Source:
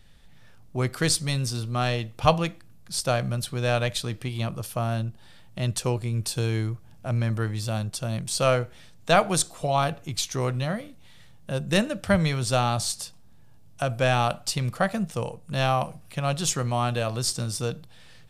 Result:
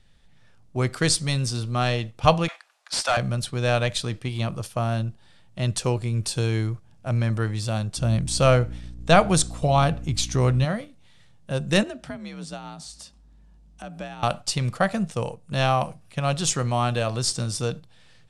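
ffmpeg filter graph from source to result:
-filter_complex "[0:a]asettb=1/sr,asplit=3[a][b][c];[a]atrim=end=2.484[d];[b]atrim=start=2.48:end=3.17,asetpts=PTS-STARTPTS,afade=t=in:d=0.004:c=qsin,afade=t=out:st=0.686:d=0.004:c=qsin,highpass=f=720:w=0.5412,highpass=f=720:w=1.3066,asplit=2[e][f];[f]highpass=f=720:p=1,volume=20dB,asoftclip=type=tanh:threshold=-15dB[g];[e][g]amix=inputs=2:normalize=0,lowpass=f=3.2k:p=1,volume=-6dB[h];[c]atrim=start=3.166[i];[d][h]acrossfade=d=0.004:c1=hsin:c2=qsin[j];[j][i]acrossfade=d=0.004:c1=qsin:c2=hsin,asettb=1/sr,asplit=3[k][l][m];[k]atrim=end=7.974[n];[l]atrim=start=7.97:end=10.65,asetpts=PTS-STARTPTS,afade=t=in:d=0.004:c=qsin,afade=t=out:st=2.676:d=0.004:c=qsin,lowshelf=f=210:g=8,aeval=exprs='val(0)+0.0158*(sin(2*PI*60*n/s)+sin(2*PI*2*60*n/s)/2+sin(2*PI*3*60*n/s)/3+sin(2*PI*4*60*n/s)/4+sin(2*PI*5*60*n/s)/5)':c=same[o];[m]atrim=start=10.646[p];[n][o]acrossfade=d=0.004:c1=hsin:c2=qsin[q];[q][p]acrossfade=d=0.004:c1=qsin:c2=hsin,asettb=1/sr,asplit=3[r][s][t];[r]atrim=end=11.834[u];[s]atrim=start=11.83:end=14.23,asetpts=PTS-STARTPTS,afade=t=in:d=0.004:c=qsin,afade=t=out:st=2.396:d=0.004:c=qsin,highshelf=f=11k:g=-7,acompressor=threshold=-32dB:ratio=10:attack=3.2:release=140:knee=1:detection=peak,afreqshift=51[v];[t]atrim=start=14.226[w];[u][v]acrossfade=d=0.004:c1=hsin:c2=qsin[x];[x][w]acrossfade=d=0.004:c1=qsin:c2=hsin,agate=range=-6dB:threshold=-35dB:ratio=16:detection=peak,lowpass=f=10k:w=0.5412,lowpass=f=10k:w=1.3066,volume=2dB"

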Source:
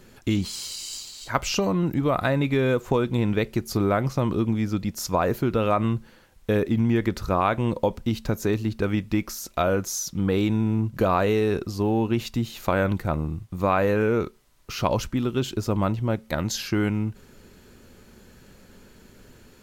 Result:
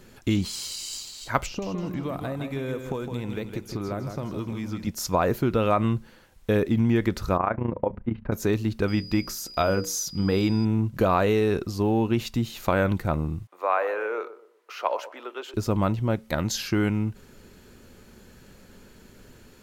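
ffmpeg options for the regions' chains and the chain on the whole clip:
-filter_complex "[0:a]asettb=1/sr,asplit=3[a][b][c];[a]atrim=end=1.464[d];[b]atrim=start=1.46:end=4.87,asetpts=PTS-STARTPTS,afade=t=in:d=0.004:c=qsin,afade=t=out:st=3.406:d=0.004:c=qsin,acrossover=split=820|5800[e][f][g];[e]acompressor=threshold=-30dB:ratio=4[h];[f]acompressor=threshold=-43dB:ratio=4[i];[g]acompressor=threshold=-56dB:ratio=4[j];[h][i][j]amix=inputs=3:normalize=0,aecho=1:1:160|320|480|640|800:0.447|0.174|0.0679|0.0265|0.0103,atrim=end_sample=150381[k];[c]atrim=start=4.866[l];[d][k]acrossfade=d=0.004:c1=hsin:c2=qsin[m];[m][l]acrossfade=d=0.004:c1=qsin:c2=hsin,asettb=1/sr,asplit=3[n][o][p];[n]atrim=end=7.374[q];[o]atrim=start=7.37:end=8.32,asetpts=PTS-STARTPTS,afade=t=in:d=0.004:c=qsin,afade=t=out:st=0.946:d=0.004:c=qsin,lowpass=f=2k:w=0.5412,lowpass=f=2k:w=1.3066,bandreject=f=50:t=h:w=6,bandreject=f=100:t=h:w=6,bandreject=f=150:t=h:w=6,bandreject=f=200:t=h:w=6,tremolo=f=28:d=0.75[r];[p]atrim=start=8.316[s];[q][r]acrossfade=d=0.004:c1=hsin:c2=qsin[t];[t][s]acrossfade=d=0.004:c1=qsin:c2=hsin,asettb=1/sr,asplit=3[u][v][w];[u]atrim=end=8.884[x];[v]atrim=start=8.88:end=10.65,asetpts=PTS-STARTPTS,afade=t=in:d=0.004:c=qsin,afade=t=out:st=1.766:d=0.004:c=qsin,bandreject=f=60:t=h:w=6,bandreject=f=120:t=h:w=6,bandreject=f=180:t=h:w=6,bandreject=f=240:t=h:w=6,bandreject=f=300:t=h:w=6,bandreject=f=360:t=h:w=6,bandreject=f=420:t=h:w=6,bandreject=f=480:t=h:w=6,bandreject=f=540:t=h:w=6,aeval=exprs='val(0)+0.00891*sin(2*PI*4900*n/s)':c=same[y];[w]atrim=start=10.646[z];[x][y]acrossfade=d=0.004:c1=hsin:c2=qsin[aa];[aa][z]acrossfade=d=0.004:c1=qsin:c2=hsin,asettb=1/sr,asplit=3[ab][ac][ad];[ab]atrim=end=13.474[ae];[ac]atrim=start=13.47:end=15.54,asetpts=PTS-STARTPTS,afade=t=in:d=0.004:c=qsin,afade=t=out:st=2.066:d=0.004:c=qsin,highpass=f=330:w=0.5412,highpass=f=330:w=1.3066,acrossover=split=460 2500:gain=0.0631 1 0.224[af][ag][ah];[af][ag][ah]amix=inputs=3:normalize=0,asplit=2[ai][aj];[aj]adelay=122,lowpass=f=1k:p=1,volume=-12.5dB,asplit=2[ak][al];[al]adelay=122,lowpass=f=1k:p=1,volume=0.36,asplit=2[am][an];[an]adelay=122,lowpass=f=1k:p=1,volume=0.36,asplit=2[ao][ap];[ap]adelay=122,lowpass=f=1k:p=1,volume=0.36[aq];[ai][ak][am][ao][aq]amix=inputs=5:normalize=0,atrim=end_sample=91287[ar];[ad]atrim=start=15.536[as];[ae][ar]acrossfade=d=0.004:c1=hsin:c2=qsin[at];[at][as]acrossfade=d=0.004:c1=qsin:c2=hsin"

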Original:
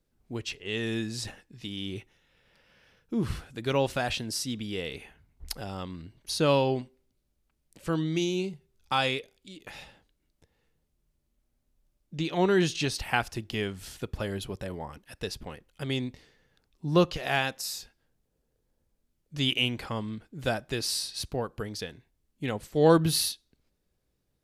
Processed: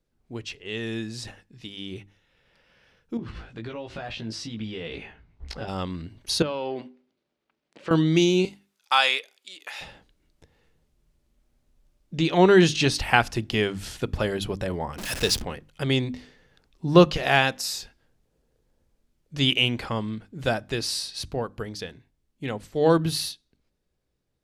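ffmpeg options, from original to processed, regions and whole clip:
-filter_complex "[0:a]asettb=1/sr,asplit=3[a][b][c];[a]atrim=end=3.174[d];[b]atrim=start=3.17:end=5.68,asetpts=PTS-STARTPTS,afade=t=in:d=0.004:c=qsin,afade=t=out:st=2.506:d=0.004:c=qsin,lowpass=4.1k,acompressor=threshold=-35dB:ratio=16:attack=3.2:release=140:knee=1:detection=peak,asplit=2[e][f];[f]adelay=18,volume=-4dB[g];[e][g]amix=inputs=2:normalize=0,atrim=end_sample=110691[h];[c]atrim=start=5.676[i];[d][h]acrossfade=d=0.004:c1=hsin:c2=qsin[j];[j][i]acrossfade=d=0.004:c1=qsin:c2=hsin,asettb=1/sr,asplit=3[k][l][m];[k]atrim=end=6.424[n];[l]atrim=start=6.42:end=7.91,asetpts=PTS-STARTPTS,afade=t=in:d=0.004:c=qsin,afade=t=out:st=1.486:d=0.004:c=qsin,aeval=exprs='if(lt(val(0),0),0.708*val(0),val(0))':c=same,highpass=270,lowpass=3.8k,acompressor=threshold=-33dB:ratio=10:attack=3.2:release=140:knee=1:detection=peak[o];[m]atrim=start=7.906[p];[n][o]acrossfade=d=0.004:c1=hsin:c2=qsin[q];[q][p]acrossfade=d=0.004:c1=qsin:c2=hsin,asettb=1/sr,asplit=3[r][s][t];[r]atrim=end=8.454[u];[s]atrim=start=8.45:end=9.81,asetpts=PTS-STARTPTS,afade=t=in:d=0.004:c=qsin,afade=t=out:st=1.356:d=0.004:c=qsin,highpass=870,equalizer=f=13k:t=o:w=0.91:g=3.5[v];[t]atrim=start=9.806[w];[u][v]acrossfade=d=0.004:c1=hsin:c2=qsin[x];[x][w]acrossfade=d=0.004:c1=qsin:c2=hsin,asettb=1/sr,asplit=3[y][z][aa];[y]atrim=end=14.984[ab];[z]atrim=start=14.98:end=15.42,asetpts=PTS-STARTPTS,afade=t=in:d=0.004:c=qsin,afade=t=out:st=0.436:d=0.004:c=qsin,aeval=exprs='val(0)+0.5*0.0133*sgn(val(0))':c=same,highshelf=f=3.3k:g=9.5[ac];[aa]atrim=start=15.416[ad];[ab][ac]acrossfade=d=0.004:c1=hsin:c2=qsin[ae];[ae][ad]acrossfade=d=0.004:c1=qsin:c2=hsin,highshelf=f=11k:g=-11.5,bandreject=f=50:t=h:w=6,bandreject=f=100:t=h:w=6,bandreject=f=150:t=h:w=6,bandreject=f=200:t=h:w=6,bandreject=f=250:t=h:w=6,bandreject=f=300:t=h:w=6,dynaudnorm=f=990:g=11:m=11dB"

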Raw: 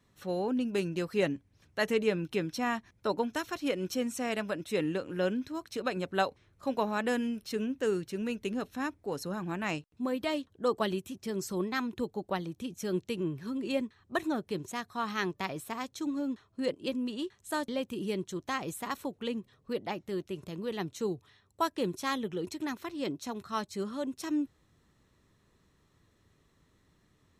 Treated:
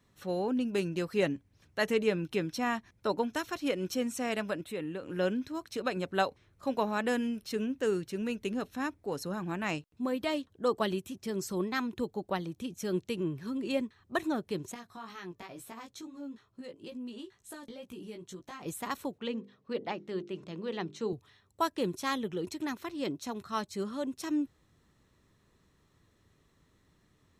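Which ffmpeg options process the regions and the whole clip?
-filter_complex "[0:a]asettb=1/sr,asplit=3[a][b][c];[a]atrim=end=4.614[d];[b]atrim=start=4.61:end=5.03,asetpts=PTS-STARTPTS,afade=t=in:d=0.004:c=qsin,afade=t=out:st=0.416:d=0.004:c=qsin,equalizer=f=5.7k:t=o:w=0.56:g=-12.5,acompressor=threshold=-44dB:ratio=1.5:attack=3.2:release=140:knee=1:detection=peak[e];[c]atrim=start=5.026[f];[d][e]acrossfade=d=0.004:c1=hsin:c2=qsin[g];[g][f]acrossfade=d=0.004:c1=qsin:c2=hsin,asettb=1/sr,asplit=3[h][i][j];[h]atrim=end=14.744[k];[i]atrim=start=14.74:end=18.66,asetpts=PTS-STARTPTS,afade=t=in:d=0.004:c=qsin,afade=t=out:st=3.916:d=0.004:c=qsin,acompressor=threshold=-38dB:ratio=5:attack=3.2:release=140:knee=1:detection=peak,flanger=delay=16:depth=2.2:speed=2.2[l];[j]atrim=start=18.656[m];[k][l]acrossfade=d=0.004:c1=hsin:c2=qsin[n];[n][m]acrossfade=d=0.004:c1=qsin:c2=hsin,asettb=1/sr,asplit=3[o][p][q];[o]atrim=end=19.184[r];[p]atrim=start=19.18:end=21.13,asetpts=PTS-STARTPTS,afade=t=in:d=0.004:c=qsin,afade=t=out:st=1.946:d=0.004:c=qsin,highpass=140,lowpass=5.1k,bandreject=f=50:t=h:w=6,bandreject=f=100:t=h:w=6,bandreject=f=150:t=h:w=6,bandreject=f=200:t=h:w=6,bandreject=f=250:t=h:w=6,bandreject=f=300:t=h:w=6,bandreject=f=350:t=h:w=6,bandreject=f=400:t=h:w=6,bandreject=f=450:t=h:w=6,bandreject=f=500:t=h:w=6[s];[q]atrim=start=21.126[t];[r][s]acrossfade=d=0.004:c1=hsin:c2=qsin[u];[u][t]acrossfade=d=0.004:c1=qsin:c2=hsin"

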